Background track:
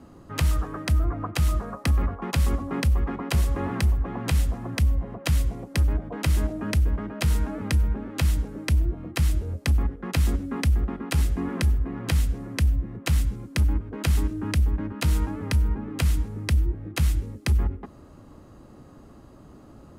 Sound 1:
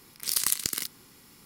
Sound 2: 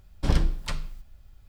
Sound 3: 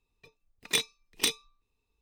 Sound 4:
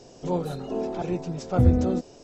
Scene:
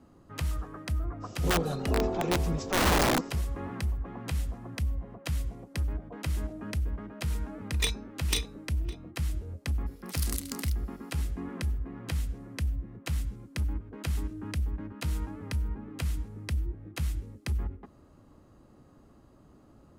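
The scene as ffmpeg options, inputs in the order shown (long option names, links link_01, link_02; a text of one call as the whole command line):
ffmpeg -i bed.wav -i cue0.wav -i cue1.wav -i cue2.wav -i cue3.wav -filter_complex "[0:a]volume=-9dB[link_01];[4:a]aeval=exprs='(mod(9.44*val(0)+1,2)-1)/9.44':channel_layout=same[link_02];[3:a]asplit=2[link_03][link_04];[link_04]adelay=559.8,volume=-15dB,highshelf=frequency=4000:gain=-12.6[link_05];[link_03][link_05]amix=inputs=2:normalize=0[link_06];[link_02]atrim=end=2.23,asetpts=PTS-STARTPTS,afade=type=in:duration=0.05,afade=type=out:start_time=2.18:duration=0.05,adelay=1200[link_07];[link_06]atrim=end=2.01,asetpts=PTS-STARTPTS,volume=-3dB,afade=type=in:duration=0.004:curve=hsin,afade=type=out:start_time=2.006:duration=0.004:curve=hsin,adelay=7090[link_08];[1:a]atrim=end=1.45,asetpts=PTS-STARTPTS,volume=-11dB,afade=type=in:duration=0.004:curve=hsin,afade=type=out:start_time=1.446:duration=0.004:curve=hsin,adelay=434826S[link_09];[link_01][link_07][link_08][link_09]amix=inputs=4:normalize=0" out.wav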